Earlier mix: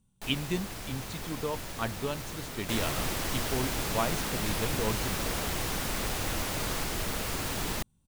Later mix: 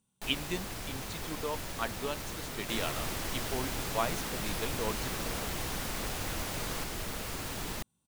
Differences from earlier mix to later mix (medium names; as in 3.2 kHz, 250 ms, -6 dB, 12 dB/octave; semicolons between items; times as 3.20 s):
speech: add high-pass 420 Hz 6 dB/octave; second sound -5.0 dB